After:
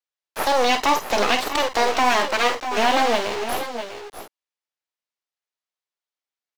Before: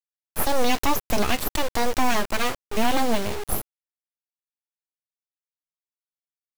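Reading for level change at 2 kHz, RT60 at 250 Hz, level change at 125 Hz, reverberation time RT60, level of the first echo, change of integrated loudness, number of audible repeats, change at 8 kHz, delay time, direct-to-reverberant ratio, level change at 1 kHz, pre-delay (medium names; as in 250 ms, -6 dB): +6.5 dB, no reverb, no reading, no reverb, -9.0 dB, +4.5 dB, 2, 0.0 dB, 48 ms, no reverb, +6.5 dB, no reverb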